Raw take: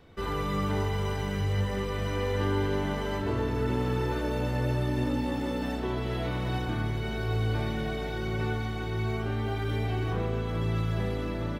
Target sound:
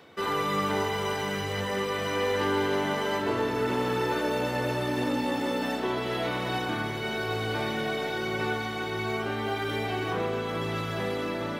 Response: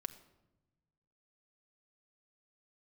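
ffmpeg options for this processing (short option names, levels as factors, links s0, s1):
-af "volume=11.2,asoftclip=hard,volume=0.0891,areverse,acompressor=mode=upward:threshold=0.0158:ratio=2.5,areverse,highpass=130,lowshelf=f=250:g=-11.5,volume=2.11"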